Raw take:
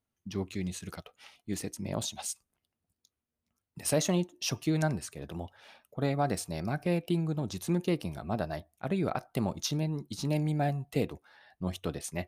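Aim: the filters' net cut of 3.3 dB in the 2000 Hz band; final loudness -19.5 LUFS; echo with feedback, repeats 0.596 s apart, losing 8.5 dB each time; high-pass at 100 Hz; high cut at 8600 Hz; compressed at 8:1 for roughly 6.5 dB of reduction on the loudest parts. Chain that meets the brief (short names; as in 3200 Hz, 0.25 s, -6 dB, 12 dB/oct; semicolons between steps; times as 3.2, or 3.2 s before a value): HPF 100 Hz; LPF 8600 Hz; bell 2000 Hz -4.5 dB; compressor 8:1, threshold -30 dBFS; feedback echo 0.596 s, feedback 38%, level -8.5 dB; gain +18 dB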